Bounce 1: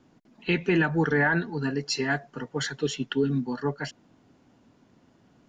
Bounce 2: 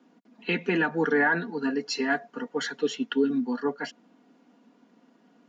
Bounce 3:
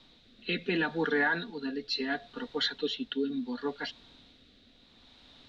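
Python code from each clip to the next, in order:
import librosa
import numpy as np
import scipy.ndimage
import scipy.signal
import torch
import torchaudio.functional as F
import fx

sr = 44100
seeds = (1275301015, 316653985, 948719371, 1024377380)

y1 = scipy.signal.sosfilt(scipy.signal.butter(6, 190.0, 'highpass', fs=sr, output='sos'), x)
y1 = fx.high_shelf(y1, sr, hz=6400.0, db=-9.5)
y1 = y1 + 0.4 * np.pad(y1, (int(4.2 * sr / 1000.0), 0))[:len(y1)]
y2 = fx.dmg_noise_colour(y1, sr, seeds[0], colour='pink', level_db=-56.0)
y2 = fx.rotary(y2, sr, hz=0.7)
y2 = fx.lowpass_res(y2, sr, hz=3800.0, q=8.7)
y2 = y2 * librosa.db_to_amplitude(-4.5)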